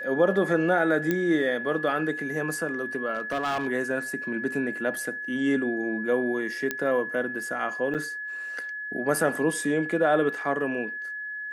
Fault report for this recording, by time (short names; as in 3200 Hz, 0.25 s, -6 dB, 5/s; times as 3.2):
tone 1700 Hz -32 dBFS
1.11 pop -12 dBFS
3.13–3.68 clipped -23.5 dBFS
6.71 pop -12 dBFS
7.94–7.95 gap 7.4 ms